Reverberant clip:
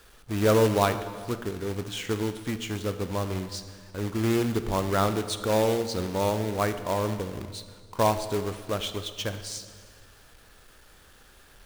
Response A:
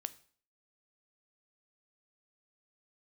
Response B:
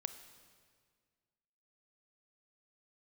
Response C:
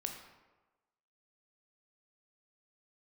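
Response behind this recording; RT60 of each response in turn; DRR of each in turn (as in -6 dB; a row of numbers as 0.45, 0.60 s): B; 0.50, 1.8, 1.2 s; 13.0, 10.0, 3.0 dB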